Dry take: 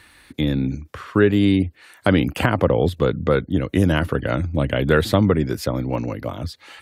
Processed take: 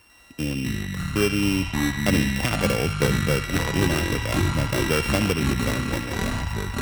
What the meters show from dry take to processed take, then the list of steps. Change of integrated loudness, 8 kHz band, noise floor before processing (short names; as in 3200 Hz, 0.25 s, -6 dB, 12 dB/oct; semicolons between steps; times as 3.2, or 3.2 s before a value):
-3.0 dB, +10.5 dB, -52 dBFS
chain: sample sorter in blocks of 16 samples; on a send: narrowing echo 70 ms, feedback 79%, band-pass 2900 Hz, level -7 dB; on the sum: echoes that change speed 98 ms, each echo -6 st, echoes 3; gain -6.5 dB